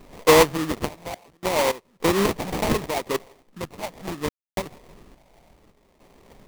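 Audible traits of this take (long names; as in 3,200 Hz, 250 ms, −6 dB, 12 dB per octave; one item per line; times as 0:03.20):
a quantiser's noise floor 10 bits, dither triangular
sample-and-hold tremolo 3.5 Hz, depth 100%
phaser sweep stages 6, 0.7 Hz, lowest notch 340–2,500 Hz
aliases and images of a low sample rate 1,500 Hz, jitter 20%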